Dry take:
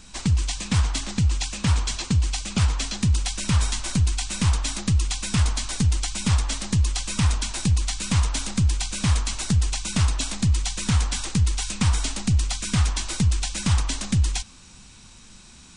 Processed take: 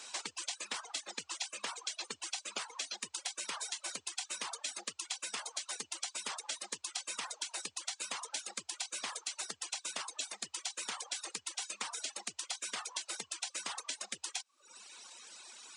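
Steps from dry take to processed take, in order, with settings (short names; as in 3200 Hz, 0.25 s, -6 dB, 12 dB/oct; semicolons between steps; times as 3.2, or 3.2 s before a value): reverb removal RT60 0.92 s; HPF 430 Hz 24 dB/oct; reverb removal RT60 0.6 s; compressor, threshold -39 dBFS, peak gain reduction 13 dB; gain +1.5 dB; Opus 96 kbps 48000 Hz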